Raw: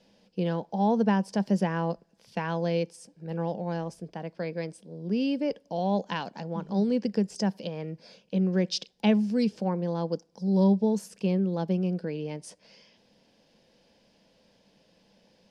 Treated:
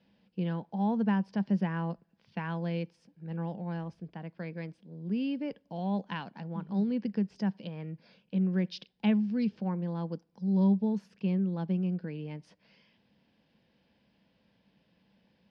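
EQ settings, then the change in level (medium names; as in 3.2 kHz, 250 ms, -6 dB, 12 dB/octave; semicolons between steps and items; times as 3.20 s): high-pass 52 Hz; distance through air 320 m; peaking EQ 530 Hz -10 dB 1.6 oct; 0.0 dB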